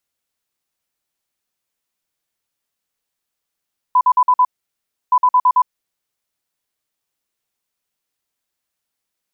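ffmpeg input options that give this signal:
-f lavfi -i "aevalsrc='0.376*sin(2*PI*1000*t)*clip(min(mod(mod(t,1.17),0.11),0.06-mod(mod(t,1.17),0.11))/0.005,0,1)*lt(mod(t,1.17),0.55)':d=2.34:s=44100"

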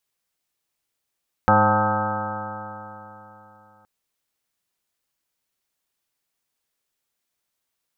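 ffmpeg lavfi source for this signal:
-f lavfi -i "aevalsrc='0.0794*pow(10,-3*t/3.41)*sin(2*PI*103.11*t)+0.0841*pow(10,-3*t/3.41)*sin(2*PI*206.9*t)+0.0335*pow(10,-3*t/3.41)*sin(2*PI*312.04*t)+0.0126*pow(10,-3*t/3.41)*sin(2*PI*419.19*t)+0.0944*pow(10,-3*t/3.41)*sin(2*PI*528.97*t)+0.0335*pow(10,-3*t/3.41)*sin(2*PI*642.01*t)+0.1*pow(10,-3*t/3.41)*sin(2*PI*758.87*t)+0.141*pow(10,-3*t/3.41)*sin(2*PI*880.1*t)+0.0316*pow(10,-3*t/3.41)*sin(2*PI*1006.21*t)+0.0335*pow(10,-3*t/3.41)*sin(2*PI*1137.67*t)+0.126*pow(10,-3*t/3.41)*sin(2*PI*1274.91*t)+0.0251*pow(10,-3*t/3.41)*sin(2*PI*1418.33*t)+0.0531*pow(10,-3*t/3.41)*sin(2*PI*1568.29*t)':d=2.37:s=44100"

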